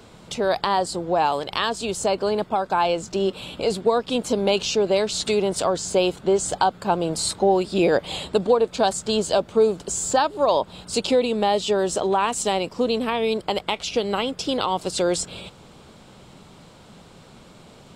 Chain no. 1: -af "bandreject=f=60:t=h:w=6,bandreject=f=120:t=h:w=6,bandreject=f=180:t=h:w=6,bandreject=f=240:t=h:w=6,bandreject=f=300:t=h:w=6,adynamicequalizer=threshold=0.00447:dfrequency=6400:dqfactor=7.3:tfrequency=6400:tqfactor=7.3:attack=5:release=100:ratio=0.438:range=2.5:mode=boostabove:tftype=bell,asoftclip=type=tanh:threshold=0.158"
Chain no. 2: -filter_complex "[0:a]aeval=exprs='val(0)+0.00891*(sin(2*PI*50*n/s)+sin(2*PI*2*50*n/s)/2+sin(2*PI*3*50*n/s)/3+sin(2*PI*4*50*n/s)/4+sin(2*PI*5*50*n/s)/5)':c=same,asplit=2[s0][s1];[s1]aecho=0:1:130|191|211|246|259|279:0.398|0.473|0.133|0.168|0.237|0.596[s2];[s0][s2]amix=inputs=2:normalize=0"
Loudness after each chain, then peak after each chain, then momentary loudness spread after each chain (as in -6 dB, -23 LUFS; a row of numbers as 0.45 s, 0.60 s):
-24.5 LUFS, -20.0 LUFS; -16.0 dBFS, -1.5 dBFS; 4 LU, 4 LU